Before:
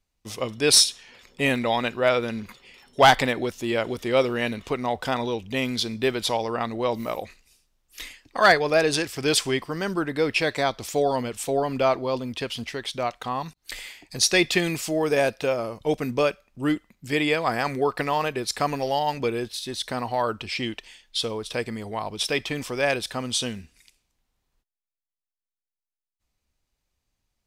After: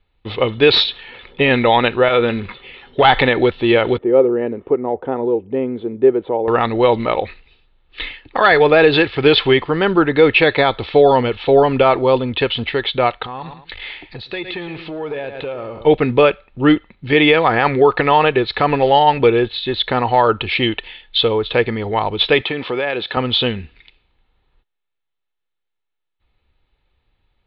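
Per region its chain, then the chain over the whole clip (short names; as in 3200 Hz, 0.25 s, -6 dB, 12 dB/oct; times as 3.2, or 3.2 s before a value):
2.08–3.05 notch 890 Hz, Q 18 + compressor 4:1, threshold -22 dBFS + doubler 21 ms -14 dB
3.98–6.48 band-pass 370 Hz, Q 1.4 + air absorption 430 m
13.24–15.85 feedback echo 0.11 s, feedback 23%, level -15 dB + compressor 5:1, threshold -36 dBFS + core saturation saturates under 960 Hz
22.41–23.17 compressor 5:1, threshold -29 dBFS + HPF 170 Hz
whole clip: steep low-pass 4000 Hz 72 dB/oct; comb 2.3 ms, depth 34%; maximiser +13 dB; gain -1 dB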